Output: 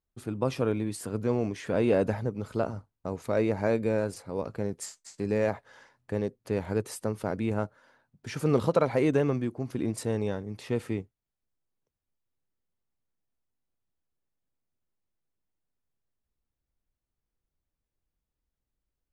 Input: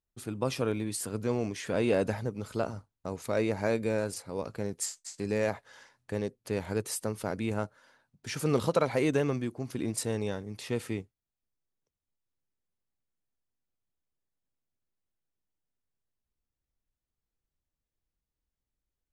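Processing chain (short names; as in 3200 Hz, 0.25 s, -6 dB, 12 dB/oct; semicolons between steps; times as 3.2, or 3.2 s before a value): high shelf 2400 Hz -9.5 dB; gain +3 dB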